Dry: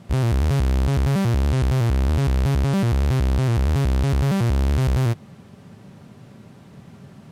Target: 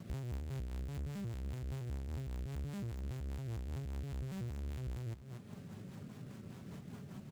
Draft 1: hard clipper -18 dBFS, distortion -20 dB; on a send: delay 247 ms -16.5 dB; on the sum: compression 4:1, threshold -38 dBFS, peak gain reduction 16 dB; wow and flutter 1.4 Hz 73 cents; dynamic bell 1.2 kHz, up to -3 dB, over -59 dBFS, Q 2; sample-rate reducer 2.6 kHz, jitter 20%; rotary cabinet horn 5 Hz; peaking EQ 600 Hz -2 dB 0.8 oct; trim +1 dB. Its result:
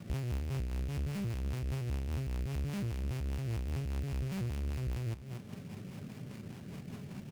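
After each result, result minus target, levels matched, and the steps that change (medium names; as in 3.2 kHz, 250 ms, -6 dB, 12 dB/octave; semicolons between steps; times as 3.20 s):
compression: peak gain reduction -5.5 dB; sample-rate reducer: distortion +5 dB
change: compression 4:1, threshold -45.5 dBFS, peak gain reduction 21.5 dB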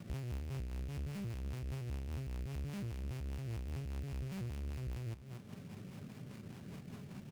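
sample-rate reducer: distortion +5 dB
change: sample-rate reducer 7.4 kHz, jitter 20%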